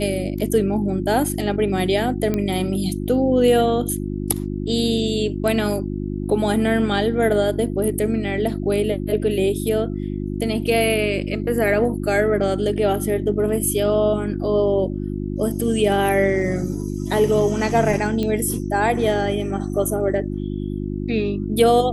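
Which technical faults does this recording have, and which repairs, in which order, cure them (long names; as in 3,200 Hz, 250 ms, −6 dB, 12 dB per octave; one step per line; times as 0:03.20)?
mains hum 50 Hz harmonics 7 −26 dBFS
0:02.34: click −10 dBFS
0:18.23: click −13 dBFS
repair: click removal
hum removal 50 Hz, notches 7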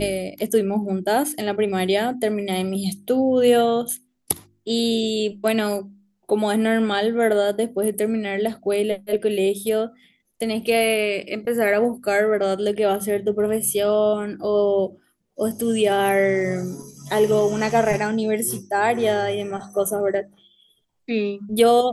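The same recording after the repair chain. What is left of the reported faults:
0:02.34: click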